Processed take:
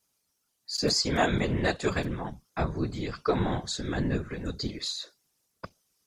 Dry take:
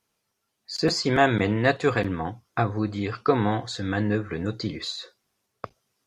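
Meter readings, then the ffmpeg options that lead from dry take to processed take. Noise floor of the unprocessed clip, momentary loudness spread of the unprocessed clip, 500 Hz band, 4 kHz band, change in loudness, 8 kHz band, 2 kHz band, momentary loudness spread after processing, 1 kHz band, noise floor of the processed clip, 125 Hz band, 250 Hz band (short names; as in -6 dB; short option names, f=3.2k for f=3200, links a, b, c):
-78 dBFS, 16 LU, -5.5 dB, 0.0 dB, -4.5 dB, +3.5 dB, -6.0 dB, 18 LU, -6.0 dB, -77 dBFS, -4.0 dB, -5.0 dB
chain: -af "bass=f=250:g=3,treble=f=4k:g=11,afftfilt=real='hypot(re,im)*cos(2*PI*random(0))':imag='hypot(re,im)*sin(2*PI*random(1))':win_size=512:overlap=0.75"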